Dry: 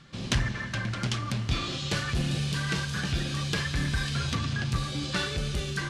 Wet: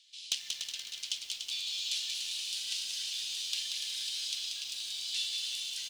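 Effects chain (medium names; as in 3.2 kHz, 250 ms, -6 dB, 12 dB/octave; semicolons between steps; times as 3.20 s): steep high-pass 2.9 kHz 36 dB/octave; hard clipper -19.5 dBFS, distortion -29 dB; delay 291 ms -7 dB; bit-crushed delay 184 ms, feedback 55%, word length 9-bit, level -4.5 dB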